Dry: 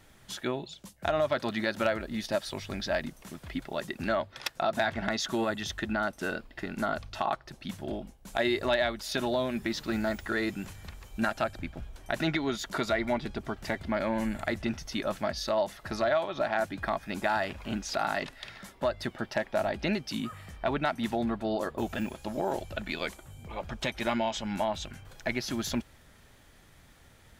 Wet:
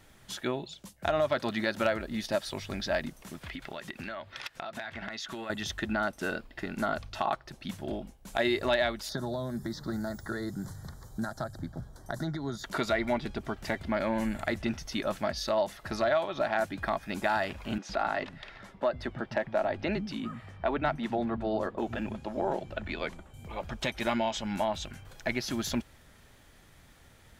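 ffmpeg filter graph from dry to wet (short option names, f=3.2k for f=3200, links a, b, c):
-filter_complex "[0:a]asettb=1/sr,asplit=3[a][b][c];[a]atrim=end=3.414[d];[b]atrim=start=3.41:end=5.5,asetpts=PTS-STARTPTS,afade=t=in:d=0.004:c=qsin,afade=t=out:st=2.086:d=0.004:c=qsin,equalizer=f=2.3k:t=o:w=2.2:g=8.5,acompressor=threshold=-36dB:ratio=6:attack=3.2:release=140:knee=1:detection=peak[e];[c]atrim=start=5.496[f];[d][e]acrossfade=d=0.004:c1=hsin:c2=qsin[g];[g][f]acrossfade=d=0.004:c1=qsin:c2=hsin,asettb=1/sr,asplit=3[h][i][j];[h]atrim=end=9.094[k];[i]atrim=start=9.09:end=12.64,asetpts=PTS-STARTPTS,afade=t=in:d=0.004:c=qsin,afade=t=out:st=3.546:d=0.004:c=qsin,equalizer=f=130:w=1.6:g=10,acrossover=split=100|4400[l][m][n];[l]acompressor=threshold=-47dB:ratio=4[o];[m]acompressor=threshold=-32dB:ratio=4[p];[n]acompressor=threshold=-50dB:ratio=4[q];[o][p][q]amix=inputs=3:normalize=0,asuperstop=centerf=2600:order=4:qfactor=1.2[r];[j]atrim=start=12.636[s];[k][r]acrossfade=d=0.004:c1=hsin:c2=qsin[t];[t][s]acrossfade=d=0.004:c1=qsin:c2=hsin,asettb=1/sr,asplit=3[u][v][w];[u]atrim=end=17.784[x];[v]atrim=start=17.78:end=23.34,asetpts=PTS-STARTPTS,afade=t=in:d=0.004:c=qsin,afade=t=out:st=5.556:d=0.004:c=qsin,aemphasis=mode=reproduction:type=75fm,acrossover=split=190[y][z];[y]adelay=110[aa];[aa][z]amix=inputs=2:normalize=0,atrim=end_sample=245196[ab];[w]atrim=start=23.336[ac];[x][ab]acrossfade=d=0.004:c1=hsin:c2=qsin[ad];[ad][ac]acrossfade=d=0.004:c1=qsin:c2=hsin"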